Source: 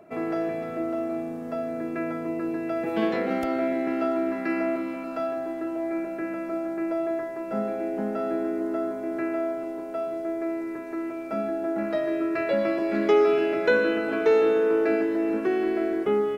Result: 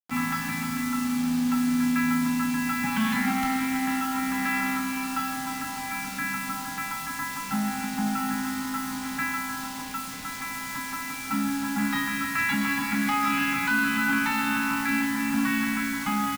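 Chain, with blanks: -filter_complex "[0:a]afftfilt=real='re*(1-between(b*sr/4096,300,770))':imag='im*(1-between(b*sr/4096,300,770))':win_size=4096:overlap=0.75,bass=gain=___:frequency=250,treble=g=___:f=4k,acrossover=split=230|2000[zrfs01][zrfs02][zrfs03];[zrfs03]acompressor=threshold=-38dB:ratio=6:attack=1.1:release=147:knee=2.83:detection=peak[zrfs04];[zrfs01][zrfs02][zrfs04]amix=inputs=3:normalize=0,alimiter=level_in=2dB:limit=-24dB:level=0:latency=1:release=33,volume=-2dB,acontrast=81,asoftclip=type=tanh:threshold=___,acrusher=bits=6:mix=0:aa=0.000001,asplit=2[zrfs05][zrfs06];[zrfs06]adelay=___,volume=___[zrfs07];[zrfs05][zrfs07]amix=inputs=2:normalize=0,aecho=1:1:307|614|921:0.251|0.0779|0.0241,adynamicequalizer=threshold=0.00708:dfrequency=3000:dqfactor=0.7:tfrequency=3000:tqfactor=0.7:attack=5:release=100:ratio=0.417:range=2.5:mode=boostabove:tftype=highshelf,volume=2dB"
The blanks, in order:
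0, -5, -20dB, 32, -8.5dB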